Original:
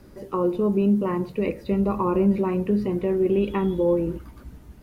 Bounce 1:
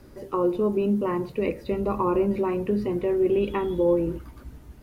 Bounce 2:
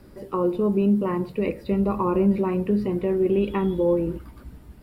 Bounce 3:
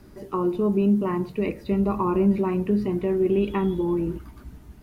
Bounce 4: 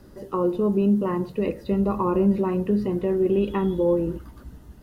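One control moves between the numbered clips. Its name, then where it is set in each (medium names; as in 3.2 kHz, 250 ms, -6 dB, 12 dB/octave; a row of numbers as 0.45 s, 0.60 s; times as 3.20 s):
band-stop, frequency: 190 Hz, 6.3 kHz, 520 Hz, 2.3 kHz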